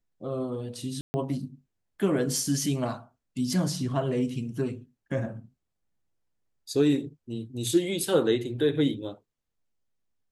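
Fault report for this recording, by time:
1.01–1.14 s: dropout 130 ms

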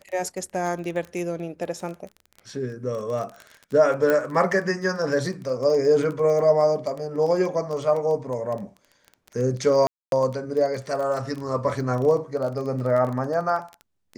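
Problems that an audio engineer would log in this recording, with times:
crackle 17 per s -29 dBFS
4.10 s: pop -10 dBFS
9.87–10.12 s: dropout 252 ms

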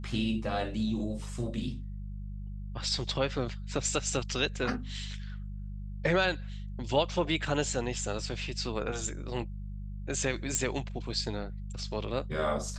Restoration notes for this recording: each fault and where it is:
hum 50 Hz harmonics 4 -39 dBFS
10.55 s: pop -15 dBFS

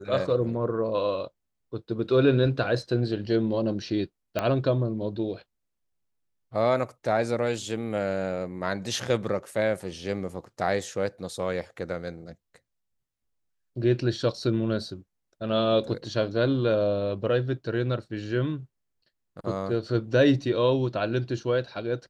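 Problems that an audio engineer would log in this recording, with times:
4.39 s: pop -12 dBFS

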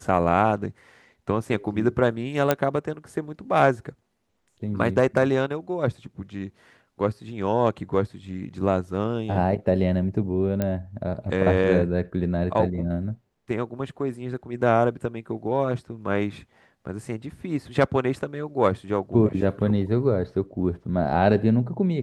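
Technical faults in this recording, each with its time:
2.51 s: pop -6 dBFS
10.62 s: pop -12 dBFS

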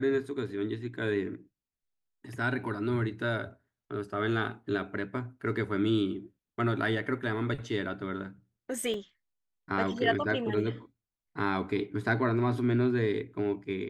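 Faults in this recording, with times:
8.94 s: dropout 2.3 ms

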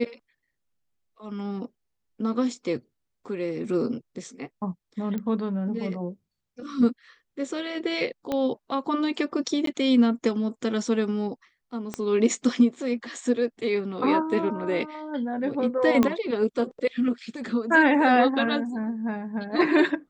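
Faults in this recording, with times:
5.18 s: pop -20 dBFS
8.32 s: pop -15 dBFS
9.66–9.67 s: dropout 13 ms
11.94 s: pop -16 dBFS
16.03 s: pop -9 dBFS

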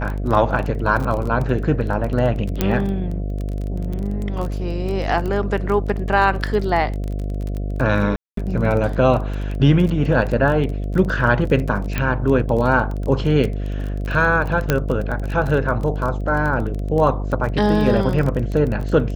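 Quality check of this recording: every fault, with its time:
buzz 50 Hz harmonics 14 -24 dBFS
crackle 22 per s -24 dBFS
2.61 s: pop -4 dBFS
8.16–8.37 s: dropout 213 ms
11.98 s: pop -8 dBFS
14.70 s: pop -3 dBFS

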